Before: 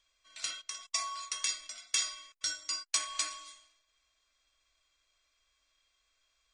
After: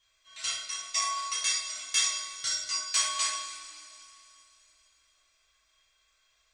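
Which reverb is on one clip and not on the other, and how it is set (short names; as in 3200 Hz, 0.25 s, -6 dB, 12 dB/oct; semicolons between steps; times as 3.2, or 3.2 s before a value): two-slope reverb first 0.5 s, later 3.3 s, from -17 dB, DRR -8.5 dB; gain -3 dB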